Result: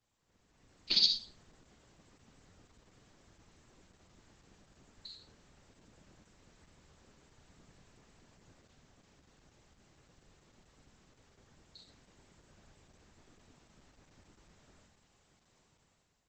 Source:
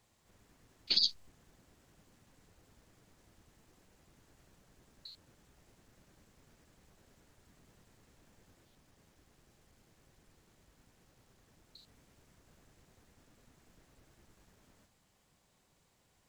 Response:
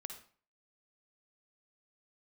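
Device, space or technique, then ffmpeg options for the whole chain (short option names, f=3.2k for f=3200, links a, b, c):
speakerphone in a meeting room: -filter_complex "[1:a]atrim=start_sample=2205[a];[0:a][a]afir=irnorm=-1:irlink=0,dynaudnorm=f=240:g=5:m=11.5dB,volume=-4dB" -ar 48000 -c:a libopus -b:a 12k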